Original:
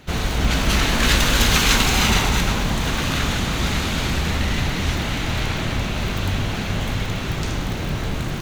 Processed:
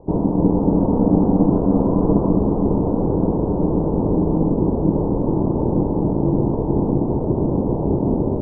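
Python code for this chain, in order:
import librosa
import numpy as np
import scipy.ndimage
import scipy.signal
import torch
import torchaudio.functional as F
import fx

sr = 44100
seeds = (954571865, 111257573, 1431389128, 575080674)

p1 = scipy.signal.sosfilt(scipy.signal.ellip(4, 1.0, 60, 700.0, 'lowpass', fs=sr, output='sos'), x)
p2 = fx.rider(p1, sr, range_db=10, speed_s=0.5)
p3 = p1 + (p2 * librosa.db_to_amplitude(-1.0))
p4 = p3 * np.sin(2.0 * np.pi * 240.0 * np.arange(len(p3)) / sr)
p5 = p4 + 10.0 ** (-11.0 / 20.0) * np.pad(p4, (int(740 * sr / 1000.0), 0))[:len(p4)]
y = p5 * librosa.db_to_amplitude(2.0)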